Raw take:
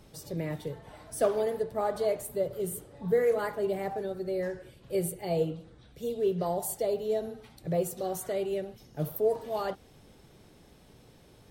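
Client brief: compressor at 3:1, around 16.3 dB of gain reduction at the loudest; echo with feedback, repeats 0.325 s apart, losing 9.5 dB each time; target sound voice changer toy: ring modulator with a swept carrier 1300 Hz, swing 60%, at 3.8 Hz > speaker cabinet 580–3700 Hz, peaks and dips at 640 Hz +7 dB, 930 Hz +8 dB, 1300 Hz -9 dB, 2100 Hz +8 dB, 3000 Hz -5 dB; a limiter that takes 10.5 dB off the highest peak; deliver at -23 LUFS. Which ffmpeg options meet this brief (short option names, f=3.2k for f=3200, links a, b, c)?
-af "acompressor=threshold=-44dB:ratio=3,alimiter=level_in=16dB:limit=-24dB:level=0:latency=1,volume=-16dB,aecho=1:1:325|650|975|1300:0.335|0.111|0.0365|0.012,aeval=exprs='val(0)*sin(2*PI*1300*n/s+1300*0.6/3.8*sin(2*PI*3.8*n/s))':c=same,highpass=580,equalizer=f=640:t=q:w=4:g=7,equalizer=f=930:t=q:w=4:g=8,equalizer=f=1.3k:t=q:w=4:g=-9,equalizer=f=2.1k:t=q:w=4:g=8,equalizer=f=3k:t=q:w=4:g=-5,lowpass=f=3.7k:w=0.5412,lowpass=f=3.7k:w=1.3066,volume=25.5dB"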